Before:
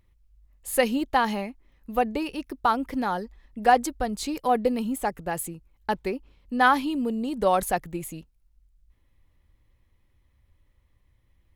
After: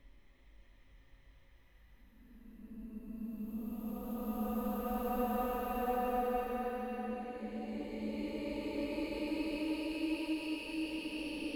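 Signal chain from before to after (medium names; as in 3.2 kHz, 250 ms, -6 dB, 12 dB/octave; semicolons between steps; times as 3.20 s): compression, threshold -33 dBFS, peak gain reduction 18.5 dB; Paulstretch 18×, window 0.25 s, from 1.67 s; trim -1 dB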